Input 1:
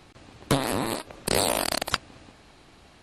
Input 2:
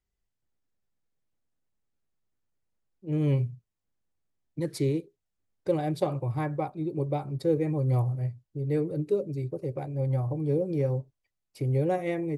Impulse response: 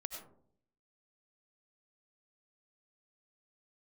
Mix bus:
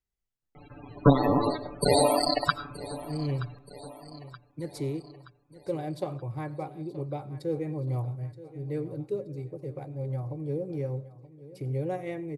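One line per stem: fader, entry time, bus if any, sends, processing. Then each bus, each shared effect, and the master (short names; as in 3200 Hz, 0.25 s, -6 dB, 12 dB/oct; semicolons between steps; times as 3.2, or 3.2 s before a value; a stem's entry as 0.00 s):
0.0 dB, 0.55 s, send -5 dB, echo send -15 dB, comb 6.9 ms, depth 73%; loudest bins only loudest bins 32
-7.0 dB, 0.00 s, send -11 dB, echo send -15 dB, dry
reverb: on, RT60 0.60 s, pre-delay 55 ms
echo: feedback echo 0.925 s, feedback 50%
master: dry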